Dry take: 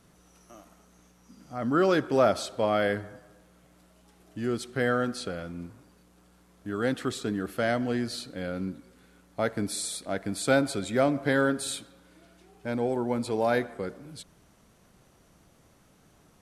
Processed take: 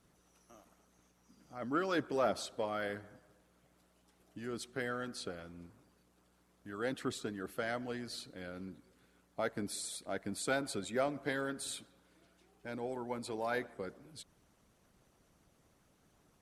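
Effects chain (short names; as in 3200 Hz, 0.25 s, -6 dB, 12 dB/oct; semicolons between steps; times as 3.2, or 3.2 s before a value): harmonic-percussive split harmonic -9 dB; added harmonics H 5 -31 dB, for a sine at -13 dBFS; gain -7 dB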